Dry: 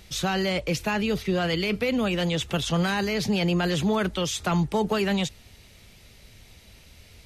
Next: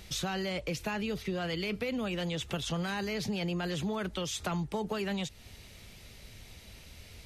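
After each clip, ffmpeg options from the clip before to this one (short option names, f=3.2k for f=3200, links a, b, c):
-af "acompressor=threshold=-34dB:ratio=3"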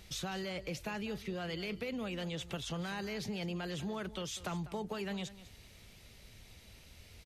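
-af "aecho=1:1:197:0.158,volume=-5.5dB"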